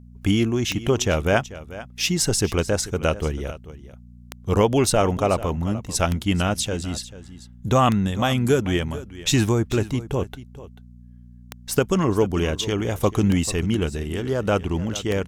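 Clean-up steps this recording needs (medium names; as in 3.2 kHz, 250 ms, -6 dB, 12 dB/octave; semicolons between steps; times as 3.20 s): de-click; de-hum 60.2 Hz, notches 4; inverse comb 440 ms -16 dB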